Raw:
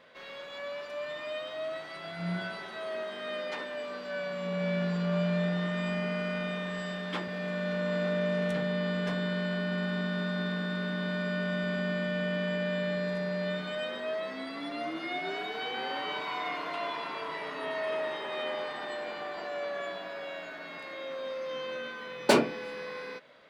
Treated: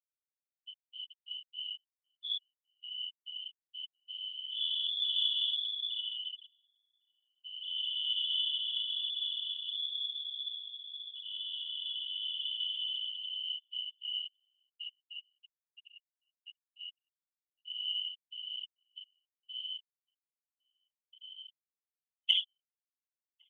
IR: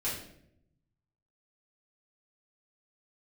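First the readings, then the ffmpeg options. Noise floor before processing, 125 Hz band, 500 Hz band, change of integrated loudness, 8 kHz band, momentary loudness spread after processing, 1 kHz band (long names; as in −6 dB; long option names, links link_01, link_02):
−43 dBFS, below −40 dB, below −40 dB, −1.5 dB, can't be measured, 18 LU, below −40 dB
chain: -filter_complex "[0:a]aecho=1:1:1.5:0.51,lowpass=frequency=3100:width_type=q:width=0.5098,lowpass=frequency=3100:width_type=q:width=0.6013,lowpass=frequency=3100:width_type=q:width=0.9,lowpass=frequency=3100:width_type=q:width=2.563,afreqshift=-3600,afftfilt=real='re*gte(hypot(re,im),0.224)':imag='im*gte(hypot(re,im),0.224)':win_size=1024:overlap=0.75,aderivative,afftfilt=real='hypot(re,im)*cos(2*PI*random(0))':imag='hypot(re,im)*sin(2*PI*random(1))':win_size=512:overlap=0.75,acrossover=split=150|1100[link_01][link_02][link_03];[link_03]aexciter=amount=2.1:drive=6.6:freq=2800[link_04];[link_01][link_02][link_04]amix=inputs=3:normalize=0,asplit=2[link_05][link_06];[link_06]adelay=1108,volume=-29dB,highshelf=frequency=4000:gain=-24.9[link_07];[link_05][link_07]amix=inputs=2:normalize=0,adynamicequalizer=threshold=0.00562:dfrequency=1800:dqfactor=0.7:tfrequency=1800:tqfactor=0.7:attack=5:release=100:ratio=0.375:range=1.5:mode=boostabove:tftype=highshelf,volume=-1dB"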